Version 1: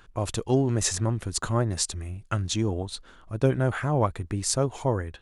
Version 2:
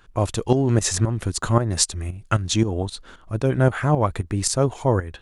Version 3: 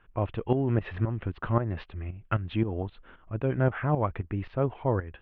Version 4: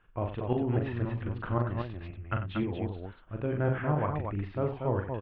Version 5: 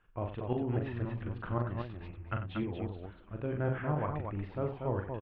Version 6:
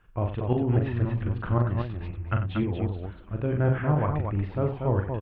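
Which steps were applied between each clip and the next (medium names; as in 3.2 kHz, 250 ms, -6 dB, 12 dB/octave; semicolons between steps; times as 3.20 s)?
tremolo saw up 3.8 Hz, depth 70%; trim +8.5 dB
steep low-pass 3 kHz 48 dB/octave; trim -7 dB
loudspeakers at several distances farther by 14 m -5 dB, 32 m -11 dB, 81 m -5 dB; trim -4.5 dB
frequency-shifting echo 476 ms, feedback 62%, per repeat -150 Hz, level -22 dB; trim -4 dB
peaking EQ 62 Hz +6 dB 3 oct; trim +6 dB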